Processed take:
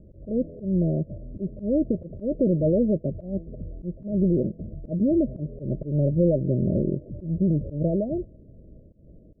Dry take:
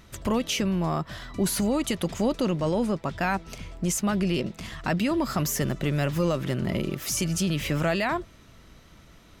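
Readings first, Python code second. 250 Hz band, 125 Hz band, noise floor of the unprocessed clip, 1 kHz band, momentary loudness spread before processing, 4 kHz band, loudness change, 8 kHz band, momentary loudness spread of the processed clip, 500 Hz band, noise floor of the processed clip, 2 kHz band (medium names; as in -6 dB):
+2.5 dB, +3.0 dB, -53 dBFS, under -15 dB, 4 LU, under -40 dB, +1.5 dB, under -40 dB, 12 LU, +2.5 dB, -51 dBFS, under -40 dB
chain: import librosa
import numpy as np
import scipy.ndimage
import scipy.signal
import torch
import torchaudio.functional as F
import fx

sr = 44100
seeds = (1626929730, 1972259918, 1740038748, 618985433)

y = scipy.signal.sosfilt(scipy.signal.cheby1(8, 1.0, 630.0, 'lowpass', fs=sr, output='sos'), x)
y = fx.auto_swell(y, sr, attack_ms=162.0)
y = F.gain(torch.from_numpy(y), 5.0).numpy()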